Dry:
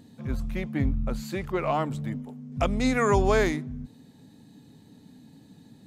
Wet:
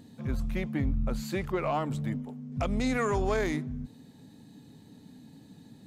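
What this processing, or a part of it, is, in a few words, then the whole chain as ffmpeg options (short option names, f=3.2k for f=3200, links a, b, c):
soft clipper into limiter: -filter_complex "[0:a]asoftclip=type=tanh:threshold=-13dB,alimiter=limit=-20.5dB:level=0:latency=1:release=97,asettb=1/sr,asplit=3[a][b][c];[a]atrim=end=2.164[d];[b]atrim=start=2.16:end=2.63,asetpts=PTS-STARTPTS,afade=t=in:d=0.004:c=qsin,afade=t=out:st=0.466:d=0.004:c=qsin,highshelf=f=7.7k:g=-5[e];[c]atrim=start=2.626[f];[d][e]acrossfade=d=0.004:c1=hsin:c2=qsin[g];[g][f]acrossfade=d=0.004:c1=qsin:c2=hsin"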